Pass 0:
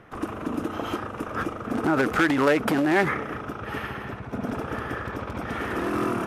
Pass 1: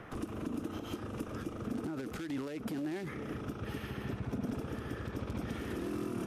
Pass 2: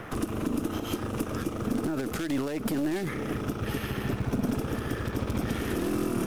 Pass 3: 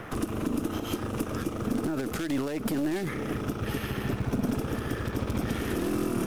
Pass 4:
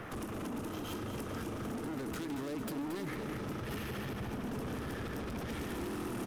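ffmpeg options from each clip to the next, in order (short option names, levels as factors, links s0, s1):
-filter_complex "[0:a]acompressor=threshold=0.0398:ratio=6,alimiter=level_in=1.41:limit=0.0631:level=0:latency=1:release=381,volume=0.708,acrossover=split=440|3000[s0][s1][s2];[s1]acompressor=threshold=0.00251:ratio=6[s3];[s0][s3][s2]amix=inputs=3:normalize=0,volume=1.26"
-filter_complex "[0:a]highshelf=f=7600:g=8,asplit=2[s0][s1];[s1]acrusher=bits=5:mode=log:mix=0:aa=0.000001,volume=0.562[s2];[s0][s2]amix=inputs=2:normalize=0,aeval=exprs='0.0891*(cos(1*acos(clip(val(0)/0.0891,-1,1)))-cos(1*PI/2))+0.00501*(cos(6*acos(clip(val(0)/0.0891,-1,1)))-cos(6*PI/2))':c=same,volume=1.68"
-af anull
-af "asoftclip=type=tanh:threshold=0.0188,aecho=1:1:226|452|678|904|1130|1356|1582:0.398|0.227|0.129|0.0737|0.042|0.024|0.0137,volume=0.75"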